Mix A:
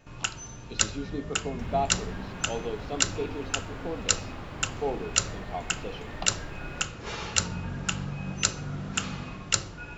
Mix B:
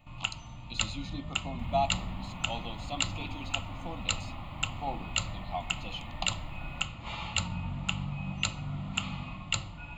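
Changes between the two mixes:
speech: remove air absorption 340 m; master: add fixed phaser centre 1600 Hz, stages 6

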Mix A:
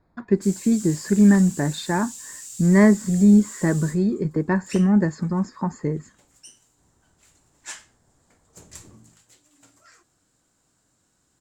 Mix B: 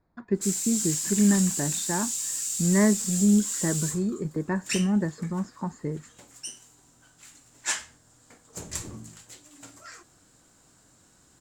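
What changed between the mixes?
speech -6.5 dB; background +8.5 dB

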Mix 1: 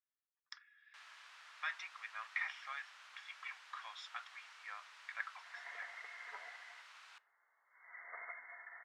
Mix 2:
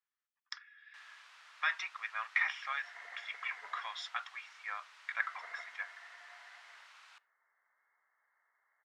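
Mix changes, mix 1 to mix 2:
speech +8.0 dB; second sound: entry -2.70 s

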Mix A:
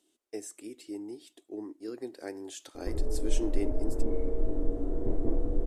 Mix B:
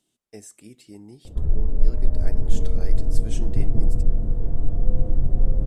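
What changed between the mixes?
background: entry -1.50 s; master: add resonant low shelf 230 Hz +10.5 dB, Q 3

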